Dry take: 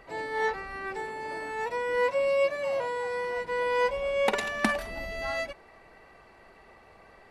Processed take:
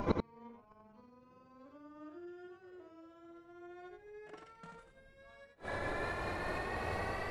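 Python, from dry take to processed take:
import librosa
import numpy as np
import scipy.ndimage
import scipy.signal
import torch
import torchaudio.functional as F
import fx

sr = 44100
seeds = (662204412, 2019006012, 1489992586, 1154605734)

y = fx.pitch_glide(x, sr, semitones=-11.5, runs='ending unshifted')
y = fx.peak_eq(y, sr, hz=95.0, db=8.0, octaves=0.81)
y = fx.gate_flip(y, sr, shuts_db=-33.0, range_db=-41)
y = y + 10.0 ** (-5.0 / 20.0) * np.pad(y, (int(86 * sr / 1000.0), 0))[:len(y)]
y = F.gain(torch.from_numpy(y), 15.5).numpy()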